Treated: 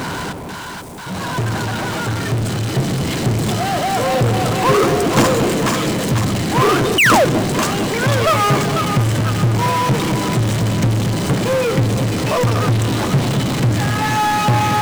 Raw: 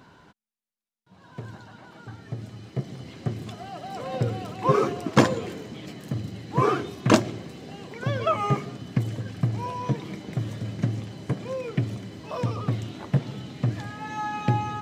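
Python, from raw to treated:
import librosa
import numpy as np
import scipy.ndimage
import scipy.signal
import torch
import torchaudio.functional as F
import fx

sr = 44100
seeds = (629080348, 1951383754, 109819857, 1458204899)

y = fx.peak_eq(x, sr, hz=8400.0, db=9.0, octaves=0.55)
y = fx.echo_split(y, sr, split_hz=830.0, low_ms=229, high_ms=490, feedback_pct=52, wet_db=-12.0)
y = fx.spec_paint(y, sr, seeds[0], shape='fall', start_s=6.98, length_s=0.27, low_hz=470.0, high_hz=3100.0, level_db=-17.0)
y = fx.power_curve(y, sr, exponent=0.35)
y = y * librosa.db_to_amplitude(-3.5)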